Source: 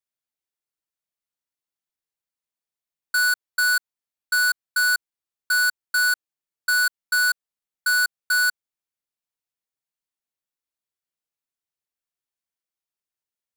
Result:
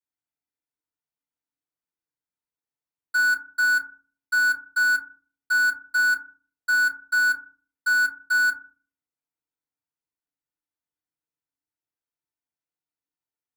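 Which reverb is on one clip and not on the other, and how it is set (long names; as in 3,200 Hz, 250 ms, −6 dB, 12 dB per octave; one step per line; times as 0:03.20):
feedback delay network reverb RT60 0.37 s, low-frequency decay 1.5×, high-frequency decay 0.3×, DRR −8 dB
level −11.5 dB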